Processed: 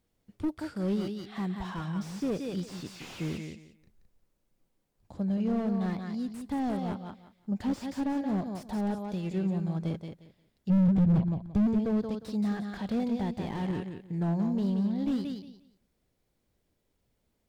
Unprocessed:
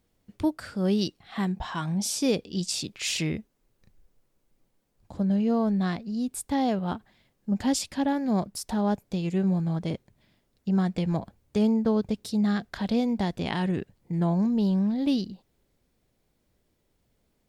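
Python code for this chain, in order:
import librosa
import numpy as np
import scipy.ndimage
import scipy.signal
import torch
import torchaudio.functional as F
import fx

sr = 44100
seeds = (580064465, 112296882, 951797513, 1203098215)

y = fx.bass_treble(x, sr, bass_db=13, treble_db=-7, at=(10.69, 11.66), fade=0.02)
y = fx.echo_feedback(y, sr, ms=177, feedback_pct=21, wet_db=-7.5)
y = fx.slew_limit(y, sr, full_power_hz=31.0)
y = y * librosa.db_to_amplitude(-5.0)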